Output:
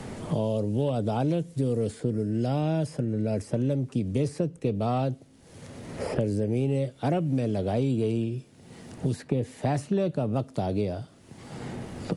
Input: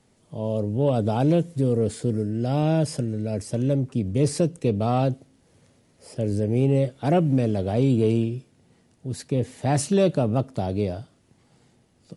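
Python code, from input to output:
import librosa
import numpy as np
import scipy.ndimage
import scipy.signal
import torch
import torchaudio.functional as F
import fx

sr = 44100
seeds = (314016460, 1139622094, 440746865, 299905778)

y = fx.band_squash(x, sr, depth_pct=100)
y = y * librosa.db_to_amplitude(-5.0)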